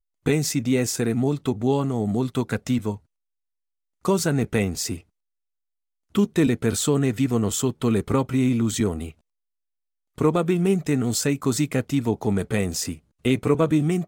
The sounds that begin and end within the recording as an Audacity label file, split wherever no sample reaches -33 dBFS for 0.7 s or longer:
4.050000	4.980000	sound
6.150000	9.110000	sound